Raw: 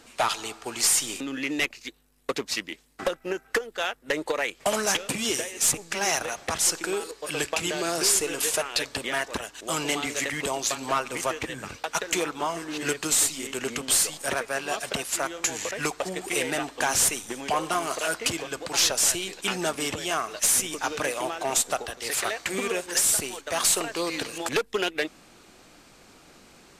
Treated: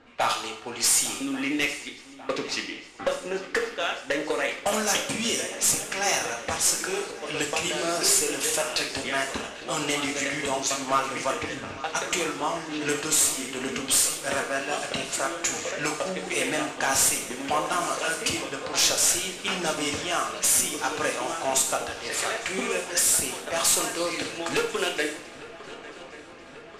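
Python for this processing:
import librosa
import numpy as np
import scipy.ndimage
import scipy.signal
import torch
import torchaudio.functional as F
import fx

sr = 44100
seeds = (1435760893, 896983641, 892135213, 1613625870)

y = fx.echo_swing(x, sr, ms=1140, ratio=3, feedback_pct=72, wet_db=-18)
y = fx.env_lowpass(y, sr, base_hz=2300.0, full_db=-21.0)
y = fx.rev_double_slope(y, sr, seeds[0], early_s=0.56, late_s=2.9, knee_db=-26, drr_db=1.5)
y = F.gain(torch.from_numpy(y), -1.5).numpy()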